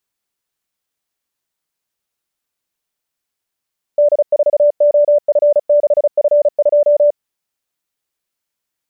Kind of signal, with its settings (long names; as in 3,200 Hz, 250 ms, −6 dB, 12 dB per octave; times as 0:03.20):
Morse code "D4OF6F2" 35 words per minute 587 Hz −7 dBFS